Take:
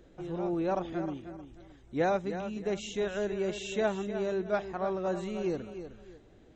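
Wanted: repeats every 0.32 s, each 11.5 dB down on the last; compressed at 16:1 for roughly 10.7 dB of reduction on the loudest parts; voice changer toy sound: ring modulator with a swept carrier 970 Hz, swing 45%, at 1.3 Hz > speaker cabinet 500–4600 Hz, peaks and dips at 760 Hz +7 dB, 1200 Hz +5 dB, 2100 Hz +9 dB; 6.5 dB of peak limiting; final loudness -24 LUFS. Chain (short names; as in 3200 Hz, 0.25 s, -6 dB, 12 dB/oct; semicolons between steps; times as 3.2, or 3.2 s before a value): compressor 16:1, threshold -34 dBFS; limiter -32 dBFS; feedback echo 0.32 s, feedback 27%, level -11.5 dB; ring modulator with a swept carrier 970 Hz, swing 45%, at 1.3 Hz; speaker cabinet 500–4600 Hz, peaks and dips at 760 Hz +7 dB, 1200 Hz +5 dB, 2100 Hz +9 dB; gain +15.5 dB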